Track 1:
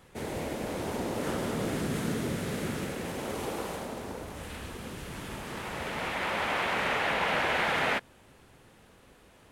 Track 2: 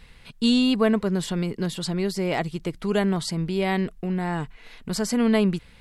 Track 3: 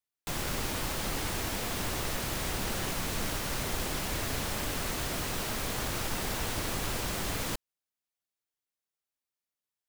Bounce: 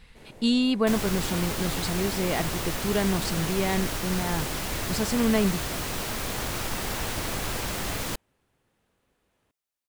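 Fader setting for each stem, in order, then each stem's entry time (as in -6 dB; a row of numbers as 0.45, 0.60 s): -15.5, -3.0, +2.5 dB; 0.00, 0.00, 0.60 s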